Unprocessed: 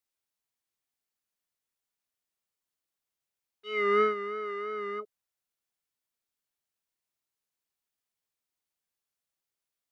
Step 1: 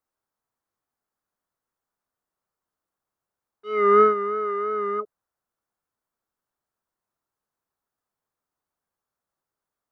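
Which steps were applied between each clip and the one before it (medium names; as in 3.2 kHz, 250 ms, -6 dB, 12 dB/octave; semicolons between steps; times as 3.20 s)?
resonant high shelf 1.8 kHz -11 dB, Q 1.5; trim +8 dB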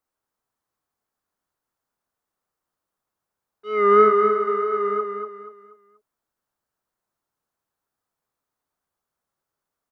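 feedback delay 241 ms, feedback 35%, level -6 dB; trim +1.5 dB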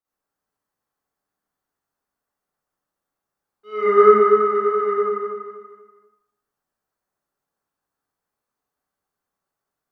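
reverberation RT60 0.75 s, pre-delay 43 ms, DRR -9.5 dB; trim -9 dB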